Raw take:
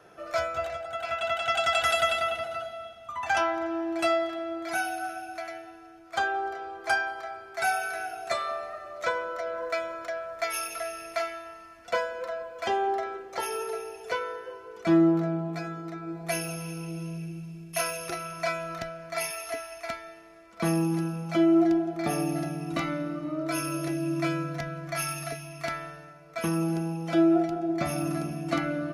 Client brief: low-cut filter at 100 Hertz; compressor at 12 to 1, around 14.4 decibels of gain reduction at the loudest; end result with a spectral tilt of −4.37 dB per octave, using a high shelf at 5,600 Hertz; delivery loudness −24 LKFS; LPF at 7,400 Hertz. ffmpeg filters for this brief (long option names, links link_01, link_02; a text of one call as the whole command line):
ffmpeg -i in.wav -af "highpass=100,lowpass=7400,highshelf=frequency=5600:gain=9,acompressor=threshold=-32dB:ratio=12,volume=12.5dB" out.wav